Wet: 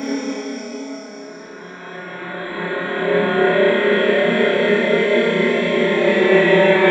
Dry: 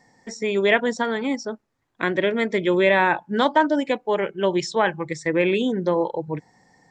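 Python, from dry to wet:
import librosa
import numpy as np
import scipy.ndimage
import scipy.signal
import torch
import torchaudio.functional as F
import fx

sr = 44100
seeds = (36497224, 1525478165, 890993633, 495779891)

y = fx.paulstretch(x, sr, seeds[0], factor=5.1, window_s=1.0, from_s=1.43)
y = fx.room_flutter(y, sr, wall_m=5.0, rt60_s=0.69)
y = fx.band_widen(y, sr, depth_pct=40)
y = F.gain(torch.from_numpy(y), 3.5).numpy()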